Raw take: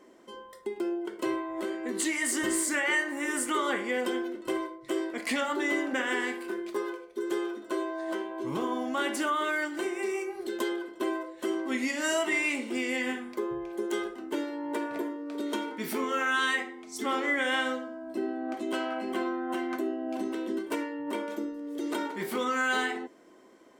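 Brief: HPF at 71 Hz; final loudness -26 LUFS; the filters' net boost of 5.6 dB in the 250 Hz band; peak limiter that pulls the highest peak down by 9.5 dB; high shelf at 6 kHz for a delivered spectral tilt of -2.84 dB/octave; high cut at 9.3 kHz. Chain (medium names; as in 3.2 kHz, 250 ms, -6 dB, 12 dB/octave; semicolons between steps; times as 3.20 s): high-pass 71 Hz; low-pass 9.3 kHz; peaking EQ 250 Hz +7.5 dB; treble shelf 6 kHz -6.5 dB; trim +6 dB; peak limiter -18 dBFS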